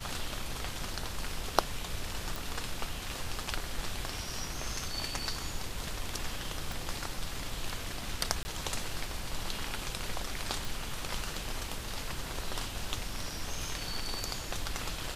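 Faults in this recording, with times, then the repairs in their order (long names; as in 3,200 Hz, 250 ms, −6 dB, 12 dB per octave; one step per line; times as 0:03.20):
0:02.36: click
0:06.72: click
0:08.43–0:08.45: drop-out 20 ms
0:10.65: click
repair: click removal
repair the gap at 0:08.43, 20 ms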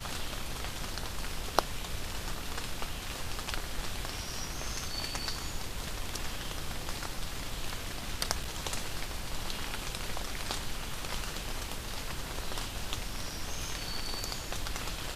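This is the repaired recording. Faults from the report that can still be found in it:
none of them is left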